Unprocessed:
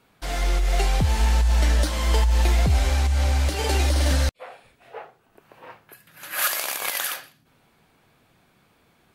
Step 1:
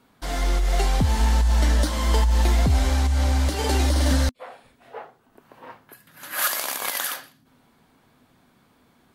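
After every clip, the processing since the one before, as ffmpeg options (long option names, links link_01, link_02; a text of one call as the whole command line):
ffmpeg -i in.wav -af "equalizer=frequency=250:width_type=o:width=0.33:gain=9,equalizer=frequency=1000:width_type=o:width=0.33:gain=3,equalizer=frequency=2500:width_type=o:width=0.33:gain=-5" out.wav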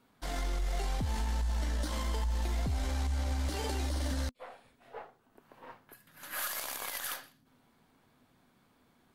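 ffmpeg -i in.wav -af "aeval=exprs='if(lt(val(0),0),0.708*val(0),val(0))':channel_layout=same,alimiter=limit=-18.5dB:level=0:latency=1:release=64,volume=-6.5dB" out.wav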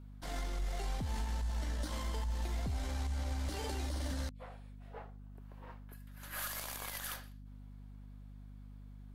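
ffmpeg -i in.wav -af "aeval=exprs='val(0)+0.00562*(sin(2*PI*50*n/s)+sin(2*PI*2*50*n/s)/2+sin(2*PI*3*50*n/s)/3+sin(2*PI*4*50*n/s)/4+sin(2*PI*5*50*n/s)/5)':channel_layout=same,volume=-4.5dB" out.wav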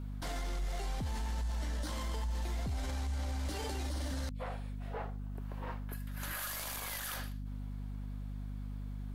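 ffmpeg -i in.wav -af "alimiter=level_in=16dB:limit=-24dB:level=0:latency=1:release=25,volume=-16dB,volume=10dB" out.wav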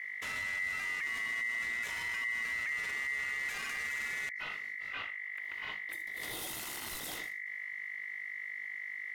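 ffmpeg -i in.wav -af "aeval=exprs='val(0)*sin(2*PI*2000*n/s)':channel_layout=same,volume=2dB" out.wav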